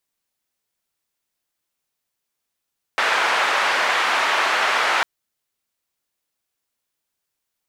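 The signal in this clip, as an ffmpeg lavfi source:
-f lavfi -i "anoisesrc=c=white:d=2.05:r=44100:seed=1,highpass=f=810,lowpass=f=1700,volume=-1.4dB"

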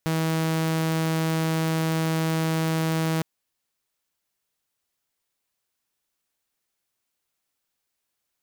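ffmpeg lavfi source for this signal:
-f lavfi -i "aevalsrc='0.106*(2*mod(161*t,1)-1)':d=3.16:s=44100"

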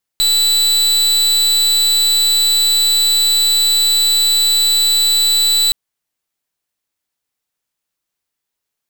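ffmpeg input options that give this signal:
-f lavfi -i "aevalsrc='0.224*(2*lt(mod(3970*t,1),0.37)-1)':d=5.52:s=44100"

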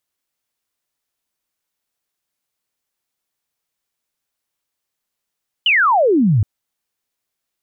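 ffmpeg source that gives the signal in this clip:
-f lavfi -i "aevalsrc='0.299*clip(t/0.002,0,1)*clip((0.77-t)/0.002,0,1)*sin(2*PI*3100*0.77/log(93/3100)*(exp(log(93/3100)*t/0.77)-1))':d=0.77:s=44100"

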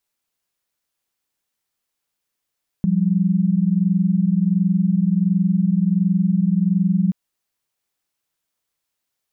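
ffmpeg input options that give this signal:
-f lavfi -i "aevalsrc='0.133*(sin(2*PI*174.61*t)+sin(2*PI*196*t))':d=4.28:s=44100"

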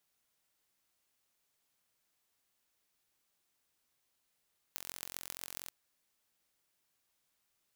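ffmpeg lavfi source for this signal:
-f lavfi -i "aevalsrc='0.266*eq(mod(n,995),0)*(0.5+0.5*eq(mod(n,5970),0))':d=0.93:s=44100"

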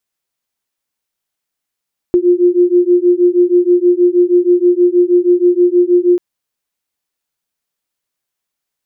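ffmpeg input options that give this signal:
-f lavfi -i "aevalsrc='0.299*(sin(2*PI*351*t)+sin(2*PI*357.3*t))':d=4.04:s=44100"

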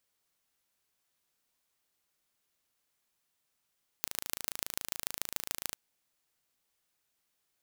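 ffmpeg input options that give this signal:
-f lavfi -i "aevalsrc='0.631*eq(mod(n,1621),0)*(0.5+0.5*eq(mod(n,6484),0))':d=1.72:s=44100"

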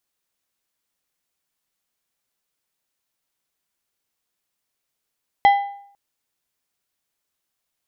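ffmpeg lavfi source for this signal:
-f lavfi -i "aevalsrc='0.422*pow(10,-3*t/0.63)*sin(2*PI*803*t)+0.133*pow(10,-3*t/0.479)*sin(2*PI*2007.5*t)+0.0422*pow(10,-3*t/0.416)*sin(2*PI*3212*t)+0.0133*pow(10,-3*t/0.389)*sin(2*PI*4015*t)+0.00422*pow(10,-3*t/0.359)*sin(2*PI*5219.5*t)':d=0.5:s=44100"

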